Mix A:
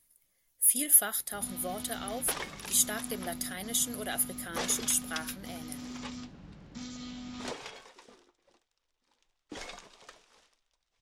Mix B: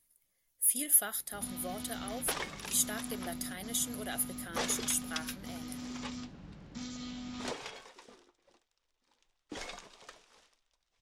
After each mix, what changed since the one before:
speech -4.0 dB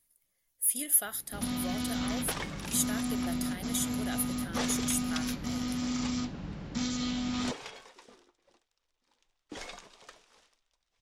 first sound +10.0 dB

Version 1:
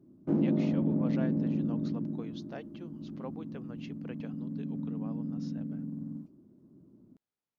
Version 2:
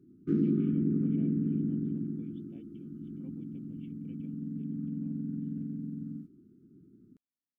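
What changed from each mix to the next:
speech: add cascade formant filter i; background: add brick-wall FIR band-stop 460–1200 Hz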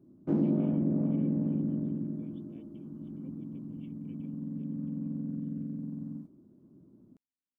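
background: remove brick-wall FIR band-stop 460–1200 Hz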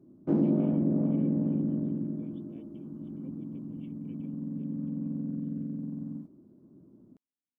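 master: add peaking EQ 540 Hz +3.5 dB 2.5 oct

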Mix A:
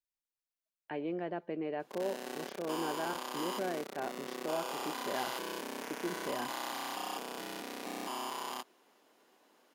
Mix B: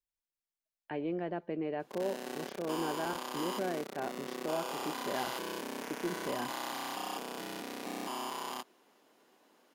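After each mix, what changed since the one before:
master: add bass shelf 180 Hz +7 dB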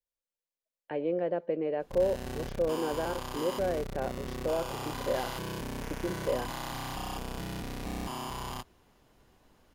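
speech: add peaking EQ 520 Hz +14.5 dB 0.34 oct; background: remove high-pass 250 Hz 24 dB/octave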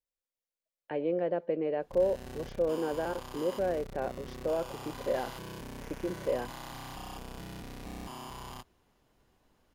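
background -6.0 dB

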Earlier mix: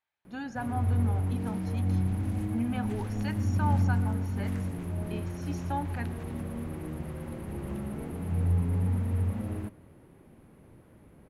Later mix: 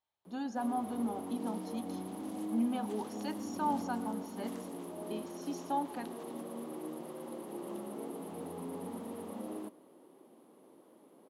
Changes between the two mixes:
background: add high-pass 270 Hz 24 dB/octave; master: add high-order bell 1.9 kHz -9.5 dB 1.1 oct

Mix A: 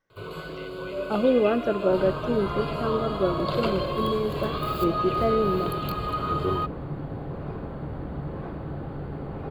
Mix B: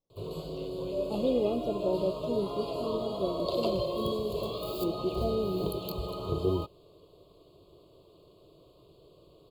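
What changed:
speech -7.0 dB; second sound: muted; master: add Butterworth band-stop 1.7 kHz, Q 0.62

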